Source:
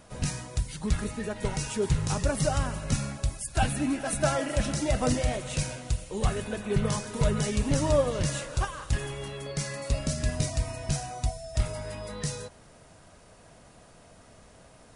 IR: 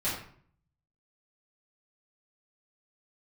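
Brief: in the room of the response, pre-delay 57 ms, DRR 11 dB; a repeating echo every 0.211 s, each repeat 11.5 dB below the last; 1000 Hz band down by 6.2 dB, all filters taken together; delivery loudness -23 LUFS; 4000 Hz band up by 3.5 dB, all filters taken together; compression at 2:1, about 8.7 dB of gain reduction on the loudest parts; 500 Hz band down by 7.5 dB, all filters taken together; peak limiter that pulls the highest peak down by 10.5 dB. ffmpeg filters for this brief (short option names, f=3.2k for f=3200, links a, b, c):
-filter_complex "[0:a]equalizer=f=500:t=o:g=-7.5,equalizer=f=1k:t=o:g=-6,equalizer=f=4k:t=o:g=5,acompressor=threshold=-36dB:ratio=2,alimiter=level_in=5.5dB:limit=-24dB:level=0:latency=1,volume=-5.5dB,aecho=1:1:211|422|633:0.266|0.0718|0.0194,asplit=2[a][b];[1:a]atrim=start_sample=2205,adelay=57[c];[b][c]afir=irnorm=-1:irlink=0,volume=-18.5dB[d];[a][d]amix=inputs=2:normalize=0,volume=16dB"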